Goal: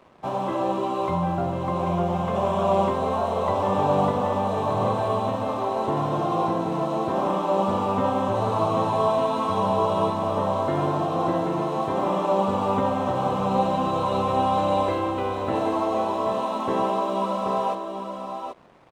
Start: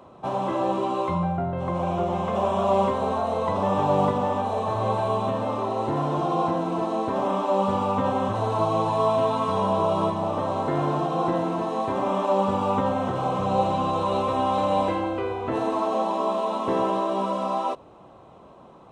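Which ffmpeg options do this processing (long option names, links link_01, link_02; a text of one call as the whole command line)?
ffmpeg -i in.wav -af "aeval=exprs='sgn(val(0))*max(abs(val(0))-0.00266,0)':channel_layout=same,aecho=1:1:782:0.473" out.wav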